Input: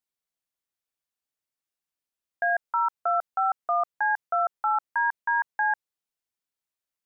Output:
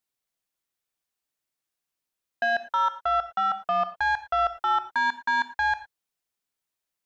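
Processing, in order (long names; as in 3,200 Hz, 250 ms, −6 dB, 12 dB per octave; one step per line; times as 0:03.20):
0:03.02–0:03.64: low-shelf EQ 300 Hz −10.5 dB
soft clipping −21.5 dBFS, distortion −16 dB
reverb whose tail is shaped and stops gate 130 ms flat, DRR 10.5 dB
level +3.5 dB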